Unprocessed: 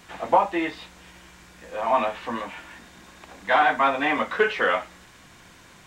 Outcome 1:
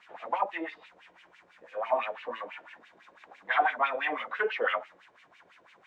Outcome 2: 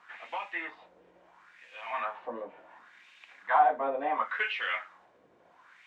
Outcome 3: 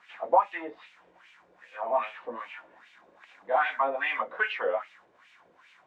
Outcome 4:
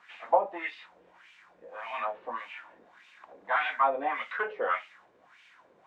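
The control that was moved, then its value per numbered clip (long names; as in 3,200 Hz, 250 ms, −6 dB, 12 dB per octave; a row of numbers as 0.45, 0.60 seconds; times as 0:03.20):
LFO wah, speed: 6, 0.71, 2.5, 1.7 Hertz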